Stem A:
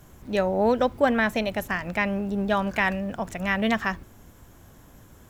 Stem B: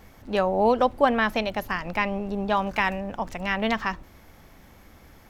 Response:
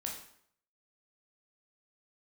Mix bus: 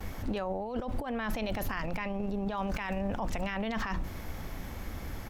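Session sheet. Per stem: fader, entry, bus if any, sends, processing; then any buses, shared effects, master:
−17.0 dB, 0.00 s, no send, no processing
+2.0 dB, 5.5 ms, polarity flipped, no send, low-shelf EQ 140 Hz +7.5 dB; mains-hum notches 60/120/180 Hz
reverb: not used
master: compressor whose output falls as the input rises −29 dBFS, ratio −1; brickwall limiter −24.5 dBFS, peak gain reduction 11 dB

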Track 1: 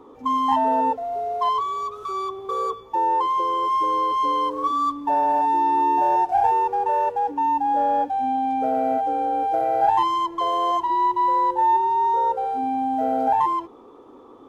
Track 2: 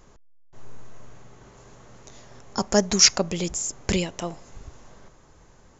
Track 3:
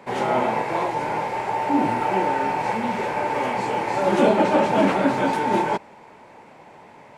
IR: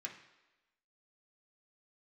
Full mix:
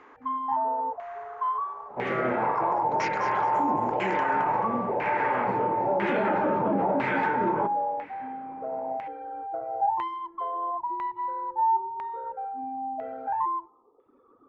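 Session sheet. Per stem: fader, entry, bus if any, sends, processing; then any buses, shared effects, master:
−11.0 dB, 0.00 s, send −16 dB, no echo send, reverb reduction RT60 1.7 s
+1.0 dB, 0.00 s, no send, echo send −4.5 dB, downward compressor, threshold −27 dBFS, peak gain reduction 16 dB; high-pass with resonance 920 Hz, resonance Q 2.1
−1.5 dB, 1.90 s, send −9 dB, no echo send, high-shelf EQ 4,400 Hz +5.5 dB; rotating-speaker cabinet horn 1.1 Hz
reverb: on, RT60 1.1 s, pre-delay 3 ms
echo: repeating echo 217 ms, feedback 58%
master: auto-filter low-pass saw down 1 Hz 730–2,200 Hz; brickwall limiter −17 dBFS, peak gain reduction 10 dB

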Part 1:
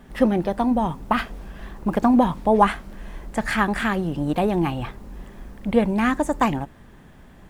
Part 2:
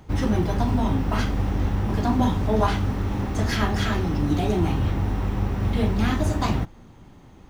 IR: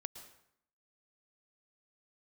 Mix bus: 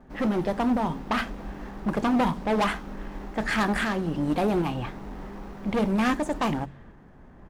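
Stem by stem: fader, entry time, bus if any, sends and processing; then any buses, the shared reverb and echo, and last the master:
0.0 dB, 0.00 s, no send, hard clipping −19 dBFS, distortion −8 dB; shaped tremolo saw up 1.3 Hz, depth 35%; low-pass that shuts in the quiet parts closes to 1,300 Hz, open at −21.5 dBFS
−7.5 dB, 6.6 ms, no send, running median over 15 samples; elliptic high-pass filter 150 Hz; low-shelf EQ 260 Hz −9 dB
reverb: not used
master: hum removal 45.97 Hz, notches 5

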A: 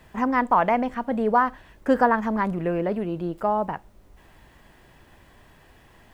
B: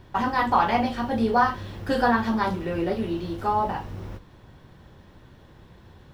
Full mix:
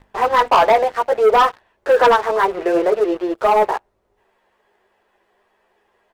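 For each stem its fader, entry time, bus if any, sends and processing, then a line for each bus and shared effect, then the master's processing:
+3.0 dB, 0.00 s, no send, elliptic high-pass filter 380 Hz, stop band 40 dB; string-ensemble chorus
−19.5 dB, 0.00 s, no send, spectral tilt +1.5 dB per octave; comb filter 2.5 ms, depth 57%; mains hum 50 Hz, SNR 11 dB; automatic ducking −13 dB, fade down 1.55 s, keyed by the first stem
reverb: not used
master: spectral tilt −2.5 dB per octave; mains-hum notches 50/100/150 Hz; leveller curve on the samples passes 3

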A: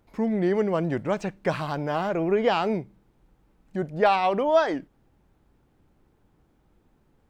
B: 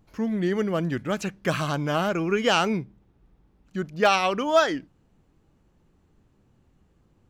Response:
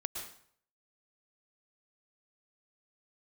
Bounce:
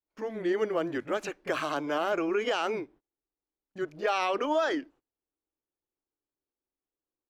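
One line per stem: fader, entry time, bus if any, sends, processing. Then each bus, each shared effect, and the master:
−19.0 dB, 0.00 s, no send, low-shelf EQ 170 Hz +5 dB
−1.0 dB, 25 ms, no send, Butterworth high-pass 280 Hz 48 dB per octave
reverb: not used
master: noise gate −53 dBFS, range −26 dB; high-shelf EQ 3,300 Hz −7 dB; brickwall limiter −18.5 dBFS, peak gain reduction 10 dB

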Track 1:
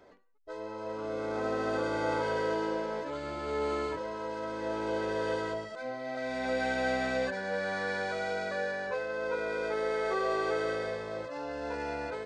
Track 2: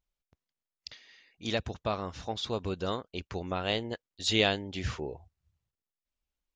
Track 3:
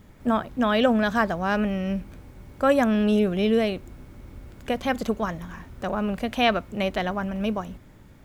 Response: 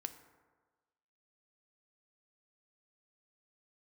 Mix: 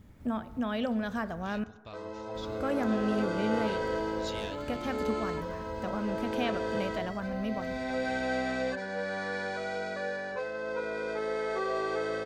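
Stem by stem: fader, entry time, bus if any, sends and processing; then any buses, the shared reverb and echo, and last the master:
−1.5 dB, 1.45 s, no bus, no send, no processing
−17.0 dB, 0.00 s, bus A, send −6 dB, soft clipping −17.5 dBFS, distortion −18 dB; tilt shelving filter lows −4.5 dB, about 1,300 Hz
−11.0 dB, 0.00 s, muted 0:01.64–0:02.35, bus A, send −3.5 dB, no processing
bus A: 0.0 dB, parametric band 80 Hz +10 dB 1.4 octaves; downward compressor, threshold −38 dBFS, peak gain reduction 12.5 dB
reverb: on, RT60 1.4 s, pre-delay 3 ms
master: parametric band 230 Hz +4.5 dB 0.59 octaves

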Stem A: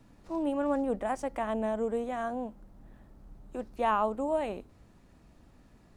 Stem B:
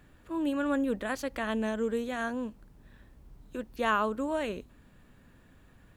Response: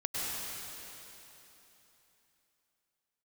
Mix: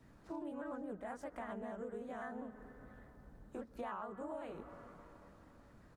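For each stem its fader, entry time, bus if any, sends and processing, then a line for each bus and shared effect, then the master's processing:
−5.5 dB, 0.00 s, no send, high-pass filter 61 Hz; notch filter 2,700 Hz, Q 28
−7.5 dB, 16 ms, send −19.5 dB, high shelf with overshoot 2,100 Hz −12 dB, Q 1.5; pitch modulation by a square or saw wave square 5 Hz, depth 160 cents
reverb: on, RT60 3.4 s, pre-delay 93 ms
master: downward compressor 6 to 1, threshold −42 dBFS, peak gain reduction 15.5 dB

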